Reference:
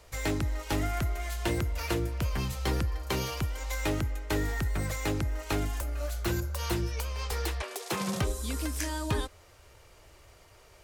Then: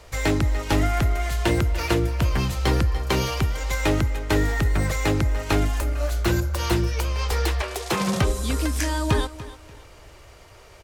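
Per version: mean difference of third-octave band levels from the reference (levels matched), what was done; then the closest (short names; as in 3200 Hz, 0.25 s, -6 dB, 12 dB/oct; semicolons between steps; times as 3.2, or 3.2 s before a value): 2.0 dB: high shelf 8400 Hz -7 dB; feedback echo 0.292 s, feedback 28%, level -16 dB; gain +8.5 dB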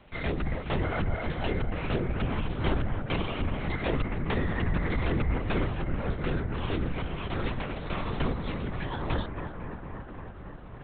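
14.5 dB: on a send: analogue delay 0.269 s, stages 4096, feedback 83%, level -9 dB; on the sum: LPC vocoder at 8 kHz whisper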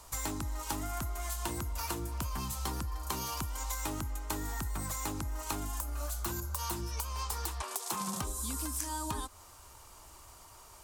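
5.0 dB: ten-band EQ 125 Hz -4 dB, 250 Hz +4 dB, 500 Hz -9 dB, 1000 Hz +11 dB, 2000 Hz -7 dB, 8000 Hz +6 dB, 16000 Hz +10 dB; compressor, threshold -33 dBFS, peak gain reduction 10 dB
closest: first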